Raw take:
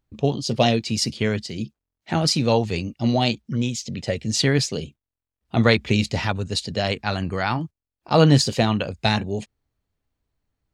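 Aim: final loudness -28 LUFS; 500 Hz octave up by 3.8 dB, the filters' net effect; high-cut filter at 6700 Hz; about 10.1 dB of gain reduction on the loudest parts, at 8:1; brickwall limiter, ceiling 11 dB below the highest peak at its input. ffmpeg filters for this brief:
-af "lowpass=6.7k,equalizer=f=500:t=o:g=4.5,acompressor=threshold=-19dB:ratio=8,volume=0.5dB,alimiter=limit=-16dB:level=0:latency=1"

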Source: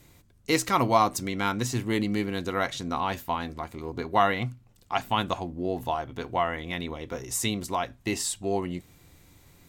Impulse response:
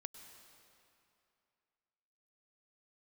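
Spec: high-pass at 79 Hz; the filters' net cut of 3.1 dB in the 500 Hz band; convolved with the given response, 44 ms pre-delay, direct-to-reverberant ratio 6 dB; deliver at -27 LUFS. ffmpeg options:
-filter_complex "[0:a]highpass=79,equalizer=f=500:t=o:g=-4.5,asplit=2[a][b];[1:a]atrim=start_sample=2205,adelay=44[c];[b][c]afir=irnorm=-1:irlink=0,volume=-1.5dB[d];[a][d]amix=inputs=2:normalize=0,volume=1.5dB"

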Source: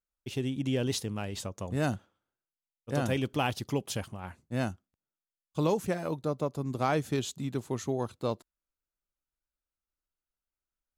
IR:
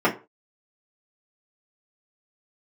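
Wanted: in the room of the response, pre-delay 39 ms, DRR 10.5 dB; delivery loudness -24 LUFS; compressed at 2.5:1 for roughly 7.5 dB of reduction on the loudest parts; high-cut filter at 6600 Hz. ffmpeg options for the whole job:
-filter_complex "[0:a]lowpass=6.6k,acompressor=threshold=-35dB:ratio=2.5,asplit=2[a][b];[1:a]atrim=start_sample=2205,adelay=39[c];[b][c]afir=irnorm=-1:irlink=0,volume=-28.5dB[d];[a][d]amix=inputs=2:normalize=0,volume=14dB"

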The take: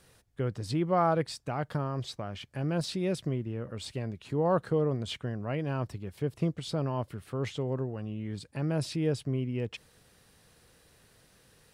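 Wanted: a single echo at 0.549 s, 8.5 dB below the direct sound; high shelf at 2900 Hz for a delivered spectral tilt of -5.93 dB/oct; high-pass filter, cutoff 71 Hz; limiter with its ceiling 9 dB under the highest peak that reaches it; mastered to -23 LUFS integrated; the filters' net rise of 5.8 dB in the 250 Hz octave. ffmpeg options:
-af "highpass=71,equalizer=f=250:t=o:g=8.5,highshelf=f=2.9k:g=7,alimiter=limit=-21.5dB:level=0:latency=1,aecho=1:1:549:0.376,volume=9dB"

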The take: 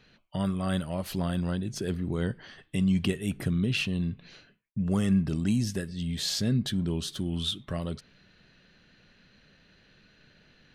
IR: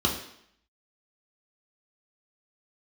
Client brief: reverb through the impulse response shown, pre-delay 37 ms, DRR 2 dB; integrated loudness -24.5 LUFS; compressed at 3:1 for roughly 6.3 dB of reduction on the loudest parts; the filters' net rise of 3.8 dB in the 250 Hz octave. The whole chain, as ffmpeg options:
-filter_complex "[0:a]equalizer=f=250:t=o:g=5.5,acompressor=threshold=-26dB:ratio=3,asplit=2[a][b];[1:a]atrim=start_sample=2205,adelay=37[c];[b][c]afir=irnorm=-1:irlink=0,volume=-13.5dB[d];[a][d]amix=inputs=2:normalize=0"

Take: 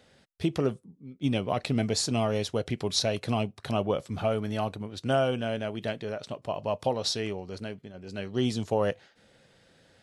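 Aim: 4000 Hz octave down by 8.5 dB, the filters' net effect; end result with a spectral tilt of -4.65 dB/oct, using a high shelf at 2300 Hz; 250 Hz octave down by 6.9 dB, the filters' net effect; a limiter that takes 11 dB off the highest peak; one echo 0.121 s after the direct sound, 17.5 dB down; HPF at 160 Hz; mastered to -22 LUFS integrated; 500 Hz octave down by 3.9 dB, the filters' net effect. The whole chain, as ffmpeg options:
-af "highpass=160,equalizer=f=250:t=o:g=-6.5,equalizer=f=500:t=o:g=-3,highshelf=f=2.3k:g=-3.5,equalizer=f=4k:t=o:g=-7.5,alimiter=level_in=3.5dB:limit=-24dB:level=0:latency=1,volume=-3.5dB,aecho=1:1:121:0.133,volume=17.5dB"

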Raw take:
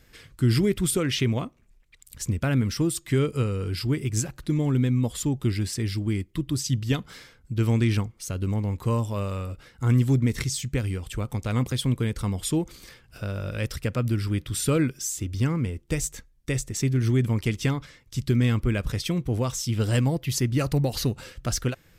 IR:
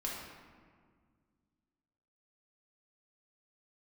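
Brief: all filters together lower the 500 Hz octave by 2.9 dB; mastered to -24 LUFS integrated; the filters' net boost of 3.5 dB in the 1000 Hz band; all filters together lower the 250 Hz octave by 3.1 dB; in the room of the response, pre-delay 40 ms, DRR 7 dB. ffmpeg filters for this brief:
-filter_complex "[0:a]equalizer=f=250:t=o:g=-3.5,equalizer=f=500:t=o:g=-3.5,equalizer=f=1k:t=o:g=5.5,asplit=2[a][b];[1:a]atrim=start_sample=2205,adelay=40[c];[b][c]afir=irnorm=-1:irlink=0,volume=-9.5dB[d];[a][d]amix=inputs=2:normalize=0,volume=2.5dB"

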